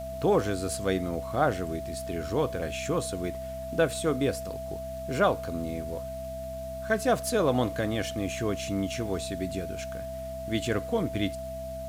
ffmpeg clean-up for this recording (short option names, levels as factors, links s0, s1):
-af "adeclick=t=4,bandreject=f=64.6:t=h:w=4,bandreject=f=129.2:t=h:w=4,bandreject=f=193.8:t=h:w=4,bandreject=f=258.4:t=h:w=4,bandreject=f=660:w=30,afwtdn=0.002"